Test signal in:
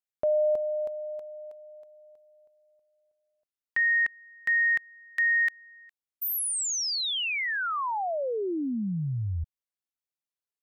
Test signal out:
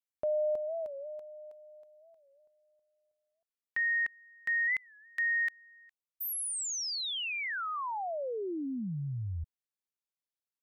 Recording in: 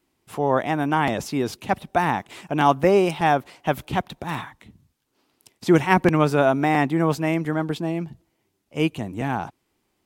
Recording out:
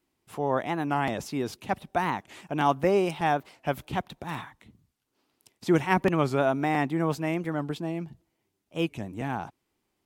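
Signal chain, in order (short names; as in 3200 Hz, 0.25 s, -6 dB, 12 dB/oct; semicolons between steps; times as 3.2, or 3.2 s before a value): record warp 45 rpm, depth 160 cents; gain -6 dB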